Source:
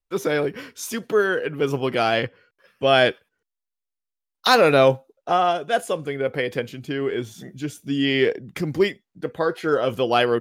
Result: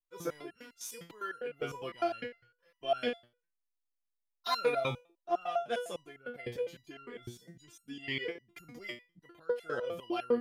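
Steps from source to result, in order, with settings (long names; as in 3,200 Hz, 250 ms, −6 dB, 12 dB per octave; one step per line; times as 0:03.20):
step-sequenced resonator 9.9 Hz 120–1,400 Hz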